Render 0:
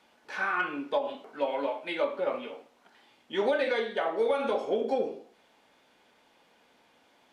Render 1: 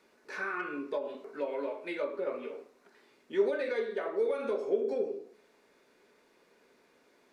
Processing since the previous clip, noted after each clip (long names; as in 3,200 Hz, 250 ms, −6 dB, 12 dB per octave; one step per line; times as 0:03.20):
thirty-one-band graphic EQ 100 Hz −10 dB, 400 Hz +11 dB, 800 Hz −9 dB, 3,150 Hz −11 dB
in parallel at +2.5 dB: downward compressor, threshold −35 dBFS, peak gain reduction 19 dB
on the sum: hum removal 53.73 Hz, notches 30
level −8.5 dB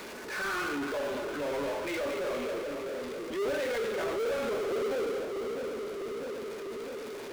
echo with a time of its own for lows and highs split 520 Hz, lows 649 ms, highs 229 ms, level −11 dB
power curve on the samples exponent 0.35
transient designer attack −6 dB, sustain +1 dB
level −7.5 dB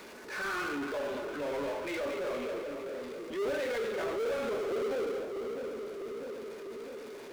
mu-law and A-law mismatch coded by A